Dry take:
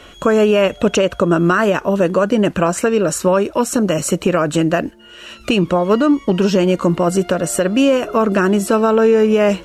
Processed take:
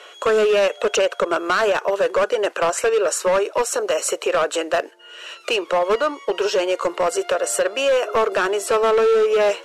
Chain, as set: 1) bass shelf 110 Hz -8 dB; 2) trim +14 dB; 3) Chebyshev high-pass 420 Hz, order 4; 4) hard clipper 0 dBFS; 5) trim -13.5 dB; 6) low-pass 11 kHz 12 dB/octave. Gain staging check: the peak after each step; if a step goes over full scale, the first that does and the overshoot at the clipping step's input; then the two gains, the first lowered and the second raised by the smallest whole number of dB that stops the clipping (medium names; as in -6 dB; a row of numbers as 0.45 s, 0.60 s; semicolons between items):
-4.0 dBFS, +10.0 dBFS, +9.0 dBFS, 0.0 dBFS, -13.5 dBFS, -12.0 dBFS; step 2, 9.0 dB; step 2 +5 dB, step 5 -4.5 dB